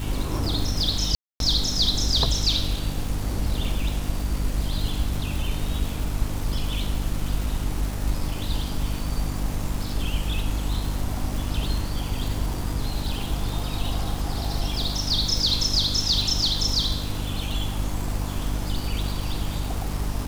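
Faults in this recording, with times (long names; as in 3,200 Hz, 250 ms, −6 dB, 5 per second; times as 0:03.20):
surface crackle 460 per second −30 dBFS
mains hum 50 Hz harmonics 6 −30 dBFS
0:01.15–0:01.40: drop-out 252 ms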